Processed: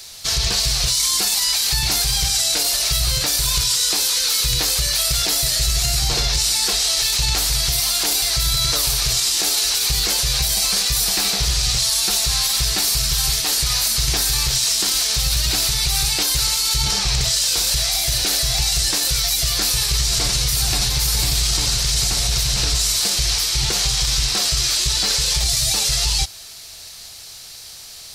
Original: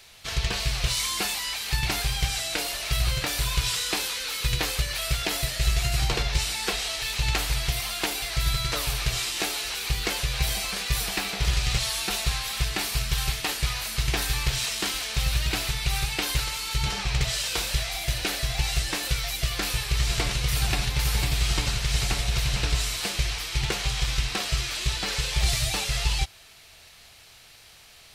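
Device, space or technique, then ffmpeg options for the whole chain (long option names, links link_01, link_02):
over-bright horn tweeter: -af "highshelf=frequency=3600:width_type=q:width=1.5:gain=8.5,alimiter=limit=-16dB:level=0:latency=1:release=24,volume=6.5dB"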